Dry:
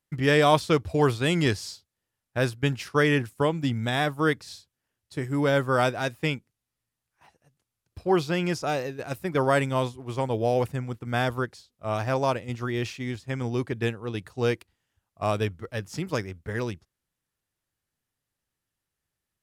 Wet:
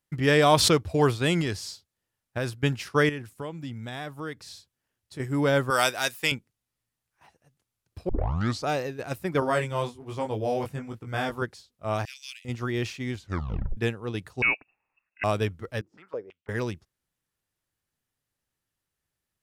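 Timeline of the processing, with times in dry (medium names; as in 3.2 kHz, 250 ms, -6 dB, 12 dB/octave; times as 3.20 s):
0.43–0.83 s: swell ahead of each attack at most 37 dB/s
1.41–2.52 s: compression, threshold -24 dBFS
3.09–5.20 s: compression 2:1, threshold -41 dBFS
5.70–6.32 s: tilt EQ +4 dB/octave
8.09 s: tape start 0.57 s
9.40–11.42 s: chorus 1.2 Hz, delay 18.5 ms, depth 2.6 ms
12.05–12.45 s: steep high-pass 2.4 kHz
13.15 s: tape stop 0.62 s
14.42–15.24 s: frequency inversion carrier 2.7 kHz
15.81–16.49 s: step-sequenced band-pass 6.1 Hz 330–4100 Hz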